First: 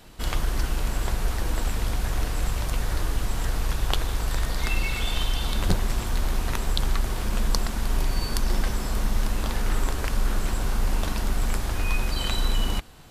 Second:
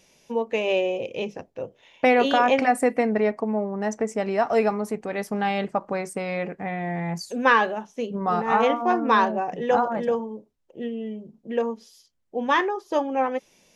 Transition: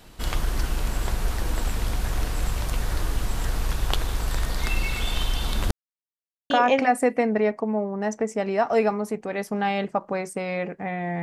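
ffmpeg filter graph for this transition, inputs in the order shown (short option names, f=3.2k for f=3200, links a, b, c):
-filter_complex "[0:a]apad=whole_dur=11.22,atrim=end=11.22,asplit=2[a][b];[a]atrim=end=5.71,asetpts=PTS-STARTPTS,afade=t=out:st=5.706:d=0.004:c=hsin[c];[b]atrim=start=5.71:end=6.5,asetpts=PTS-STARTPTS,volume=0[d];[1:a]atrim=start=2.3:end=7.02,asetpts=PTS-STARTPTS,afade=t=in:d=0.004:c=hsin[e];[c][d][e]concat=n=3:v=0:a=1"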